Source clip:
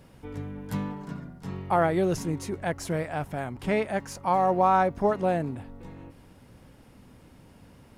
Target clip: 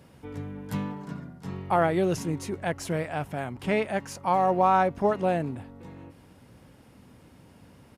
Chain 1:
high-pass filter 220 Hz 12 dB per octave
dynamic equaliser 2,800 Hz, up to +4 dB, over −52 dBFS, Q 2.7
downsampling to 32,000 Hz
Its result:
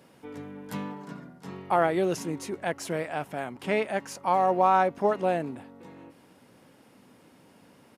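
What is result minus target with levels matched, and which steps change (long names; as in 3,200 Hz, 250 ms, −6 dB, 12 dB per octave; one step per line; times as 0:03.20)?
125 Hz band −6.5 dB
change: high-pass filter 63 Hz 12 dB per octave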